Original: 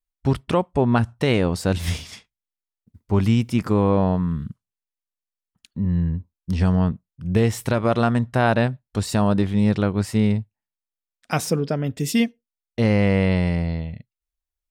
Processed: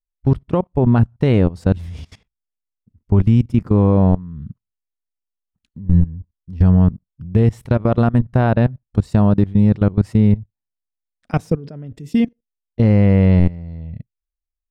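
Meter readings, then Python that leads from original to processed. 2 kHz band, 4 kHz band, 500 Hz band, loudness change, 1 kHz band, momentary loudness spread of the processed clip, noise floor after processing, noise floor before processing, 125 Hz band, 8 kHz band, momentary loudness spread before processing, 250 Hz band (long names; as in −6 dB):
−4.5 dB, can't be measured, +1.5 dB, +5.0 dB, −1.0 dB, 18 LU, −84 dBFS, below −85 dBFS, +6.5 dB, below −15 dB, 9 LU, +4.5 dB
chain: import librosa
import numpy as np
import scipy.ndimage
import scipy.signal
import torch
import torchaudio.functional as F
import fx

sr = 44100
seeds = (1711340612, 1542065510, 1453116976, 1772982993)

y = fx.level_steps(x, sr, step_db=20)
y = fx.tilt_eq(y, sr, slope=-3.0)
y = y * librosa.db_to_amplitude(1.0)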